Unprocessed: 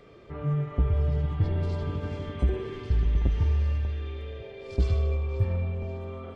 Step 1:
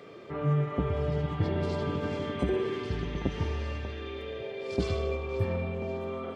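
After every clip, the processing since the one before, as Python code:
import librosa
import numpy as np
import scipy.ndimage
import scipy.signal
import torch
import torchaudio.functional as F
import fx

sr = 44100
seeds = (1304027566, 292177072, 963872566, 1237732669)

y = scipy.signal.sosfilt(scipy.signal.butter(2, 170.0, 'highpass', fs=sr, output='sos'), x)
y = y * librosa.db_to_amplitude(5.0)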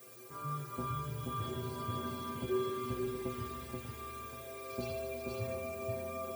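y = fx.dmg_noise_colour(x, sr, seeds[0], colour='blue', level_db=-47.0)
y = fx.stiff_resonator(y, sr, f0_hz=120.0, decay_s=0.32, stiffness=0.008)
y = y + 10.0 ** (-3.0 / 20.0) * np.pad(y, (int(480 * sr / 1000.0), 0))[:len(y)]
y = y * librosa.db_to_amplitude(1.0)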